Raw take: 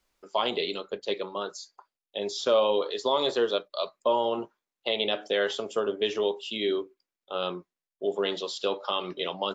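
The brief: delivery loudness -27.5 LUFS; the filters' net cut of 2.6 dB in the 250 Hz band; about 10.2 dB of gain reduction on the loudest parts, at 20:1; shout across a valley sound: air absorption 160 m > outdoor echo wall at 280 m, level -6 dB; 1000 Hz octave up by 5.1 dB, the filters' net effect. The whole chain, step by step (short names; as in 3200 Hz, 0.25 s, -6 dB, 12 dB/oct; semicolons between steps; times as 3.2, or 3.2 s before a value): bell 250 Hz -4.5 dB; bell 1000 Hz +7 dB; compressor 20:1, threshold -26 dBFS; air absorption 160 m; outdoor echo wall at 280 m, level -6 dB; gain +6.5 dB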